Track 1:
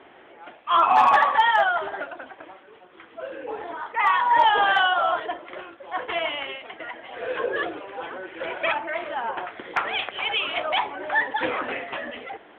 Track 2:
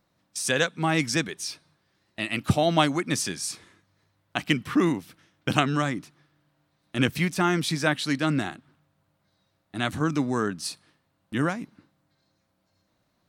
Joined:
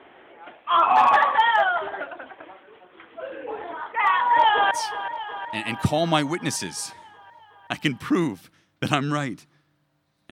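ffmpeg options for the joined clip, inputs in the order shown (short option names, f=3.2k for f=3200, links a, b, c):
-filter_complex "[0:a]apad=whole_dur=10.31,atrim=end=10.31,atrim=end=4.712[a];[1:a]atrim=start=1.358:end=6.96[b];[a][b]acrossfade=d=0.004:c1=hsin:c2=hsin,asplit=2[c][d];[d]afade=t=in:st=4.17:d=0.01,afade=t=out:st=4.71:d=0.01,aecho=0:1:370|740|1110|1480|1850|2220|2590|2960|3330|3700:0.266073|0.186251|0.130376|0.0912629|0.063884|0.0447188|0.0313032|0.0219122|0.0153386|0.010737[e];[c][e]amix=inputs=2:normalize=0"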